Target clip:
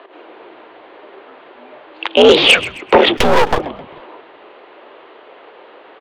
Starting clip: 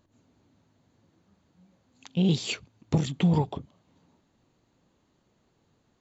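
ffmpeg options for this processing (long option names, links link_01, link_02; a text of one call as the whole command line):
ffmpeg -i in.wav -filter_complex "[0:a]highpass=frequency=350:width_type=q:width=0.5412,highpass=frequency=350:width_type=q:width=1.307,lowpass=frequency=3100:width_type=q:width=0.5176,lowpass=frequency=3100:width_type=q:width=0.7071,lowpass=frequency=3100:width_type=q:width=1.932,afreqshift=64,aeval=exprs='0.119*(cos(1*acos(clip(val(0)/0.119,-1,1)))-cos(1*PI/2))+0.0473*(cos(5*acos(clip(val(0)/0.119,-1,1)))-cos(5*PI/2))':channel_layout=same,asplit=2[link_01][link_02];[link_02]asplit=3[link_03][link_04][link_05];[link_03]adelay=132,afreqshift=-110,volume=-20.5dB[link_06];[link_04]adelay=264,afreqshift=-220,volume=-28.7dB[link_07];[link_05]adelay=396,afreqshift=-330,volume=-36.9dB[link_08];[link_06][link_07][link_08]amix=inputs=3:normalize=0[link_09];[link_01][link_09]amix=inputs=2:normalize=0,asettb=1/sr,asplit=3[link_10][link_11][link_12];[link_10]atrim=end=3.174[link_13];[link_11]atrim=start=3.17:end=3.59,asetpts=PTS-STARTPTS,afade=type=in:duration=0.004:curve=qsin,afade=type=out:start_time=0.416:duration=0.004:curve=qsin,aeval=exprs='max(val(0),0)':channel_layout=same[link_14];[link_12]atrim=start=3.586[link_15];[link_13][link_14]acrossfade=duration=0.004:curve1=hsin:curve2=qsin[link_16];[link_16][link_15]acrossfade=duration=0.004:curve1=qsin:curve2=hsin,alimiter=level_in=24.5dB:limit=-1dB:release=50:level=0:latency=1,volume=-1dB" out.wav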